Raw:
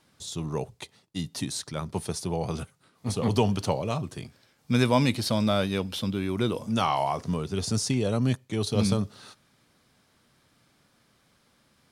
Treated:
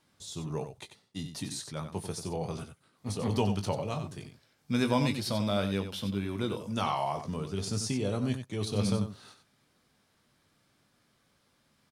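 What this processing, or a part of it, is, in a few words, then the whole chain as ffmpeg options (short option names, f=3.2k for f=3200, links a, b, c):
slapback doubling: -filter_complex "[0:a]asplit=3[a][b][c];[b]adelay=20,volume=-8.5dB[d];[c]adelay=92,volume=-9dB[e];[a][d][e]amix=inputs=3:normalize=0,volume=-6dB"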